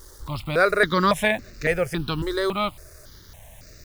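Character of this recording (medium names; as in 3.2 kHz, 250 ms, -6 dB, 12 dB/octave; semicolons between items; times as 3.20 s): a quantiser's noise floor 8-bit, dither none; notches that jump at a steady rate 3.6 Hz 680–3200 Hz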